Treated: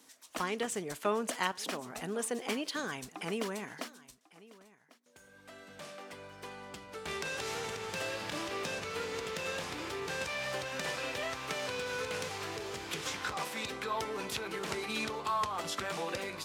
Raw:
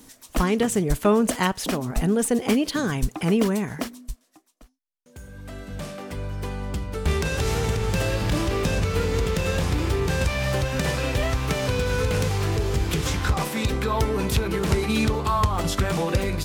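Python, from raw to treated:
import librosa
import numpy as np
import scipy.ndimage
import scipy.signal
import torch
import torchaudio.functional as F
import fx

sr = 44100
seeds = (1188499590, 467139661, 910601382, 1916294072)

y = fx.weighting(x, sr, curve='A')
y = y + 10.0 ** (-21.0 / 20.0) * np.pad(y, (int(1097 * sr / 1000.0), 0))[:len(y)]
y = y * 10.0 ** (-8.5 / 20.0)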